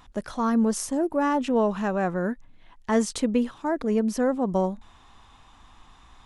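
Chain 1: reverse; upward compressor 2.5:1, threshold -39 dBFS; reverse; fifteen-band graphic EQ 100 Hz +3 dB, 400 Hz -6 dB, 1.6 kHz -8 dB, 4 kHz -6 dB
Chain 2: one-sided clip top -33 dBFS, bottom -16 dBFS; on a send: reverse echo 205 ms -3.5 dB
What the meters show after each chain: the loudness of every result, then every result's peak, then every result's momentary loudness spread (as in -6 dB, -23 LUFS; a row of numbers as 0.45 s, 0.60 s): -27.0 LUFS, -26.5 LUFS; -13.5 dBFS, -12.0 dBFS; 7 LU, 7 LU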